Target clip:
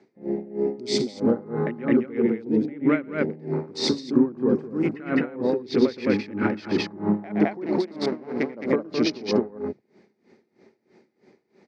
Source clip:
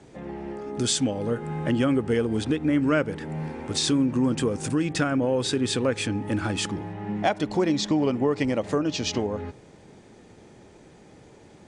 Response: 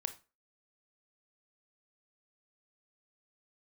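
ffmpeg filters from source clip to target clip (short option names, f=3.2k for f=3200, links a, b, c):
-filter_complex "[0:a]asettb=1/sr,asplit=3[a][b][c];[a]atrim=end=4.084[d];[b]atrim=start=4.08:end=5.52,asetpts=PTS-STARTPTS,afade=t=in:d=0.004:c=qsin,afade=t=out:st=1.436:d=0.004:c=qsin,acrossover=split=3000[e][f];[f]acompressor=threshold=-44dB:ratio=4:attack=1:release=60[g];[e][g]amix=inputs=2:normalize=0[h];[c]atrim=start=5.516[i];[d][h]acrossfade=d=0.004:c1=hsin:c2=qsin[j];[j][i]acrossfade=d=0.004:c1=qsin:c2=hsin,afwtdn=0.02,acompressor=threshold=-27dB:ratio=6,asettb=1/sr,asplit=3[k][l][m];[k]atrim=end=7.664[n];[l]atrim=start=7.66:end=8.5,asetpts=PTS-STARTPTS,afade=t=in:d=0.004:c=qsin,afade=t=out:st=0.836:d=0.004:c=qsin,aeval=exprs='max(val(0),0)':c=same[o];[m]atrim=start=8.496[p];[n][o]acrossfade=d=0.004:c1=hsin:c2=qsin[q];[q][p]acrossfade=d=0.004:c1=qsin:c2=hsin,aexciter=amount=1.5:drive=5.2:freq=4k,highpass=190,equalizer=f=220:t=q:w=4:g=8,equalizer=f=380:t=q:w=4:g=9,equalizer=f=2.1k:t=q:w=4:g=9,equalizer=f=3.3k:t=q:w=4:g=-8,lowpass=f=5.5k:w=0.5412,lowpass=f=5.5k:w=1.3066,aecho=1:1:116.6|212.8:0.282|0.891,aeval=exprs='val(0)*pow(10,-21*(0.5-0.5*cos(2*PI*3.1*n/s))/20)':c=same,volume=7dB"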